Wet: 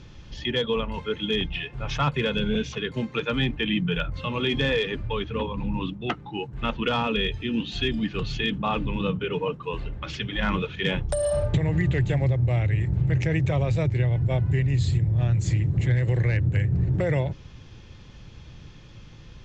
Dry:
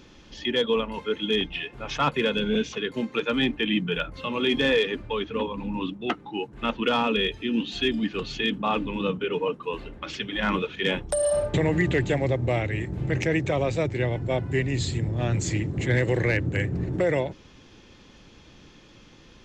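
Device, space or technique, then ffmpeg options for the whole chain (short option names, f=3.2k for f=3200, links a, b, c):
jukebox: -af "lowpass=7.6k,lowshelf=f=180:t=q:w=1.5:g=9.5,acompressor=threshold=-19dB:ratio=6"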